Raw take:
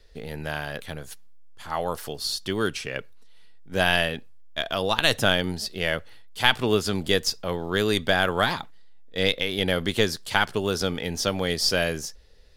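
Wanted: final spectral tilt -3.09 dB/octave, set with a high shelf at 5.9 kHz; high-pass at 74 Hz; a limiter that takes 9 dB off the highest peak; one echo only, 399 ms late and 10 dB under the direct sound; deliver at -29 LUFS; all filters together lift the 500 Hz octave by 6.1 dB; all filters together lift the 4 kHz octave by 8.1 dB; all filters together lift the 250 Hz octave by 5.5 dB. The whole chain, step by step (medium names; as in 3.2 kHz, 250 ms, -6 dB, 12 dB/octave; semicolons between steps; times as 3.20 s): high-pass 74 Hz; peaking EQ 250 Hz +6 dB; peaking EQ 500 Hz +5.5 dB; peaking EQ 4 kHz +7.5 dB; treble shelf 5.9 kHz +8 dB; peak limiter -5.5 dBFS; delay 399 ms -10 dB; trim -8 dB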